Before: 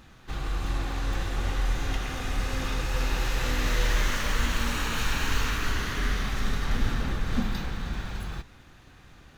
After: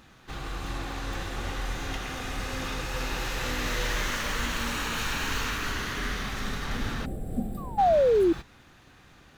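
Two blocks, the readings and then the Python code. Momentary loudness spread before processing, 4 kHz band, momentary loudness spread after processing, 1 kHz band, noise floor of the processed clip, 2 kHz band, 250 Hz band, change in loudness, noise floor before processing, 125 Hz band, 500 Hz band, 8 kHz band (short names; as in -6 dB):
7 LU, 0.0 dB, 11 LU, +4.0 dB, -55 dBFS, 0.0 dB, +1.5 dB, +0.5 dB, -52 dBFS, -5.0 dB, +11.0 dB, 0.0 dB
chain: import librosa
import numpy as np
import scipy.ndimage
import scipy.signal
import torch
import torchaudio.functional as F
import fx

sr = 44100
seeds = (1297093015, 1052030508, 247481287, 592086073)

y = fx.spec_paint(x, sr, seeds[0], shape='fall', start_s=7.57, length_s=0.76, low_hz=320.0, high_hz=1200.0, level_db=-20.0)
y = fx.low_shelf(y, sr, hz=91.0, db=-9.0)
y = fx.spec_box(y, sr, start_s=7.05, length_s=0.73, low_hz=800.0, high_hz=7400.0, gain_db=-23)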